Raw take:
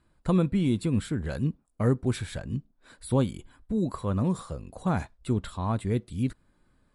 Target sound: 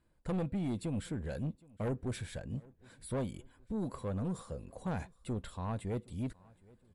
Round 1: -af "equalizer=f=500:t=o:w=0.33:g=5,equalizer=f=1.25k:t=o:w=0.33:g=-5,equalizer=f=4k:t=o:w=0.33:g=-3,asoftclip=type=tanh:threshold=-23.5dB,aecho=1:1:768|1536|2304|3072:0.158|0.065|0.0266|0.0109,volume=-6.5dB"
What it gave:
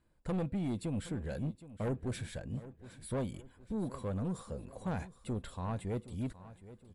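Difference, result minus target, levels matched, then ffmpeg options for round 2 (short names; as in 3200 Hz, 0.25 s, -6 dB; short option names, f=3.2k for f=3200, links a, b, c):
echo-to-direct +8.5 dB
-af "equalizer=f=500:t=o:w=0.33:g=5,equalizer=f=1.25k:t=o:w=0.33:g=-5,equalizer=f=4k:t=o:w=0.33:g=-3,asoftclip=type=tanh:threshold=-23.5dB,aecho=1:1:768|1536|2304:0.0596|0.0244|0.01,volume=-6.5dB"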